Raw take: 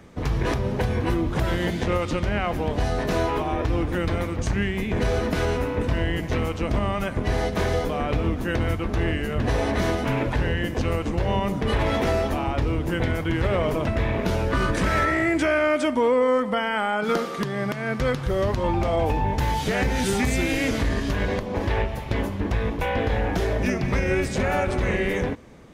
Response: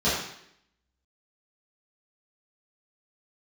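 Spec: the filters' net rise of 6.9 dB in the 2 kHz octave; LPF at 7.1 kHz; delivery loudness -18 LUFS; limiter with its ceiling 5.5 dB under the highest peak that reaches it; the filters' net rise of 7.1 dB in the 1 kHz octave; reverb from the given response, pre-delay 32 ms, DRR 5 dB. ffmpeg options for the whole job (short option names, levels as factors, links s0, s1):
-filter_complex "[0:a]lowpass=7100,equalizer=f=1000:t=o:g=7.5,equalizer=f=2000:t=o:g=6,alimiter=limit=0.282:level=0:latency=1,asplit=2[s0][s1];[1:a]atrim=start_sample=2205,adelay=32[s2];[s1][s2]afir=irnorm=-1:irlink=0,volume=0.1[s3];[s0][s3]amix=inputs=2:normalize=0,volume=1.33"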